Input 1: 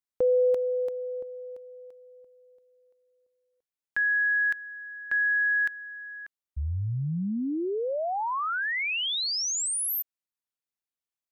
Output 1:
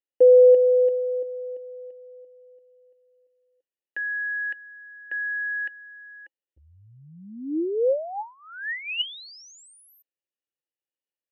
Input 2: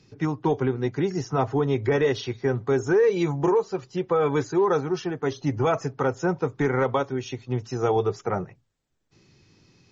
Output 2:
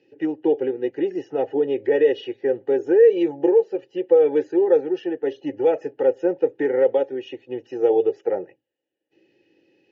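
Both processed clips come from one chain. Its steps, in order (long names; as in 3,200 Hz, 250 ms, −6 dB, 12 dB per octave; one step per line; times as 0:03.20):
dynamic equaliser 470 Hz, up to +4 dB, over −34 dBFS, Q 4.7
formant filter e
hollow resonant body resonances 320/830/2,900 Hz, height 16 dB, ringing for 40 ms
level +6.5 dB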